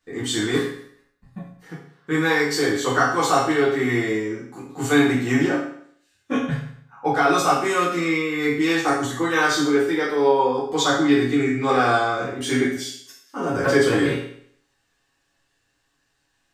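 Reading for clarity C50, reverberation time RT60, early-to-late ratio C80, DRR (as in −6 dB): 2.5 dB, 0.60 s, 7.0 dB, −9.0 dB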